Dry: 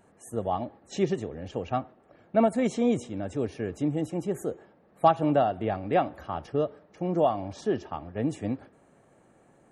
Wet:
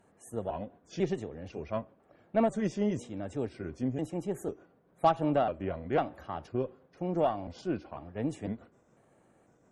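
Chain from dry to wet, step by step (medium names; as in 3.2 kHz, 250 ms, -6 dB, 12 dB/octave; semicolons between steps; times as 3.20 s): pitch shift switched off and on -2.5 st, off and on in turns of 498 ms; Chebyshev shaper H 6 -28 dB, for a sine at -9 dBFS; trim -4.5 dB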